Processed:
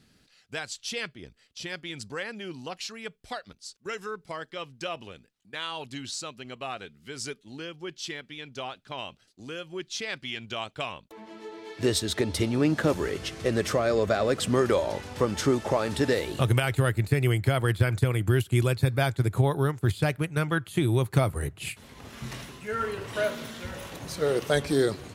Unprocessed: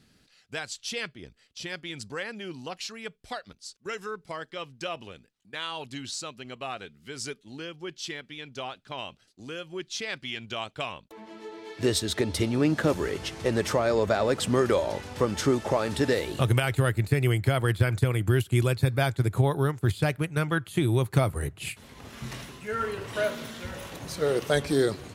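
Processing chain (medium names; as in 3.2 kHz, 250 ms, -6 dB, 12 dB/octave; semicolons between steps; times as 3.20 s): 13.10–14.52 s: band-stop 900 Hz, Q 5.4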